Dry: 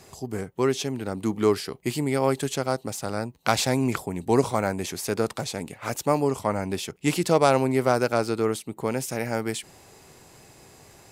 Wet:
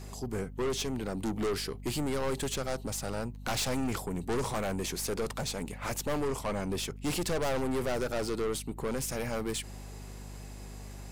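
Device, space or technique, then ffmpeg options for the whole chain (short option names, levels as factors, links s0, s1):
valve amplifier with mains hum: -af "aeval=exprs='(tanh(25.1*val(0)+0.25)-tanh(0.25))/25.1':c=same,aeval=exprs='val(0)+0.00708*(sin(2*PI*50*n/s)+sin(2*PI*2*50*n/s)/2+sin(2*PI*3*50*n/s)/3+sin(2*PI*4*50*n/s)/4+sin(2*PI*5*50*n/s)/5)':c=same"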